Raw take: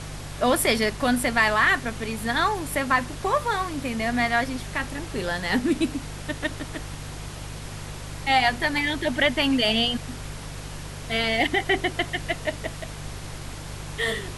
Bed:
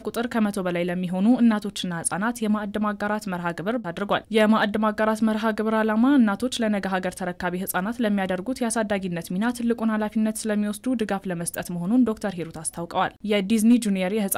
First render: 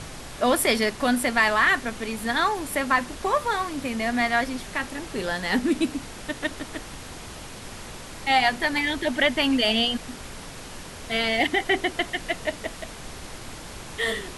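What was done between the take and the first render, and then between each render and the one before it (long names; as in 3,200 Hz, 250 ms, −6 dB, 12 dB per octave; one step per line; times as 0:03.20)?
hum removal 50 Hz, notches 3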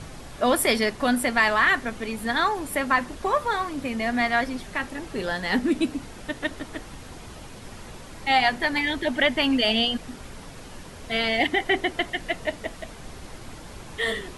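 broadband denoise 6 dB, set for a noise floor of −40 dBFS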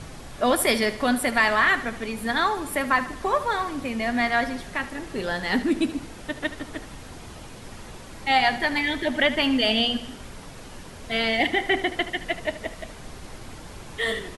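repeating echo 75 ms, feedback 52%, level −14.5 dB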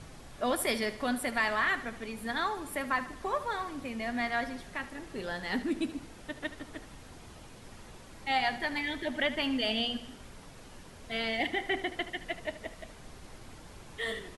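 level −9 dB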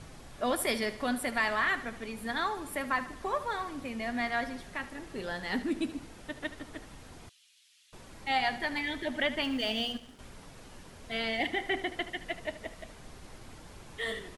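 0:07.29–0:07.93: four-pole ladder high-pass 2,500 Hz, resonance 35%
0:09.44–0:10.19: mu-law and A-law mismatch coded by A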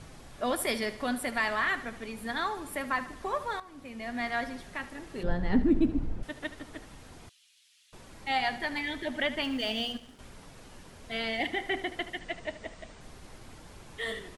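0:03.60–0:04.31: fade in, from −14 dB
0:05.23–0:06.23: spectral tilt −4.5 dB per octave
0:12.19–0:13.01: Butterworth low-pass 9,000 Hz 96 dB per octave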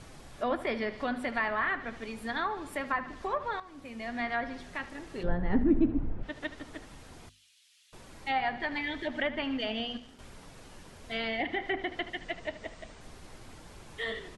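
mains-hum notches 50/100/150/200/250 Hz
treble cut that deepens with the level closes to 2,100 Hz, closed at −26.5 dBFS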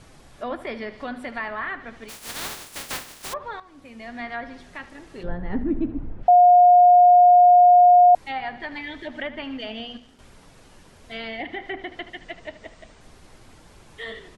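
0:02.08–0:03.32: compressing power law on the bin magnitudes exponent 0.16
0:06.28–0:08.15: beep over 714 Hz −9 dBFS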